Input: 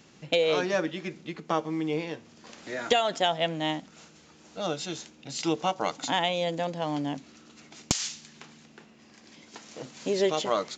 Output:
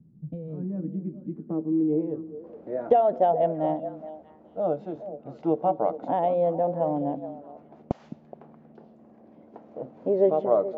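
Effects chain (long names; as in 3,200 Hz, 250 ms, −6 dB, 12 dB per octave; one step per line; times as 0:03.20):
low-pass filter sweep 170 Hz → 640 Hz, 0:00.49–0:02.95
echo through a band-pass that steps 211 ms, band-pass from 210 Hz, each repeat 1.4 octaves, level −8 dB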